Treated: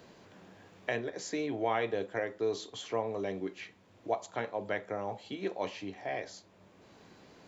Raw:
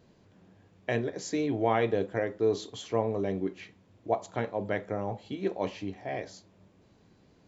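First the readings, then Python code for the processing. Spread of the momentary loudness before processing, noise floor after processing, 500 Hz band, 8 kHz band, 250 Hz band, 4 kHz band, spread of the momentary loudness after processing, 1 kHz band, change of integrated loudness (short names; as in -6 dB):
11 LU, -62 dBFS, -4.5 dB, n/a, -6.5 dB, -0.5 dB, 16 LU, -3.0 dB, -4.5 dB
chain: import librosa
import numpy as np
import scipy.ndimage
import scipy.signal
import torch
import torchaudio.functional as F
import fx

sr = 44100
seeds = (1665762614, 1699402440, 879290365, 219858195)

y = fx.low_shelf(x, sr, hz=360.0, db=-11.5)
y = fx.band_squash(y, sr, depth_pct=40)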